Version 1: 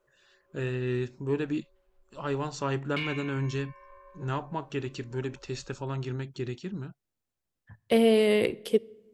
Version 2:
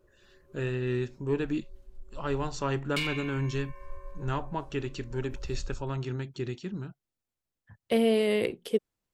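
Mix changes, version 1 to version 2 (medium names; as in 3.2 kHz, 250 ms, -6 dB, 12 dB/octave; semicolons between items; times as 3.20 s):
background: remove three-band isolator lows -21 dB, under 480 Hz, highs -21 dB, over 3.4 kHz; reverb: off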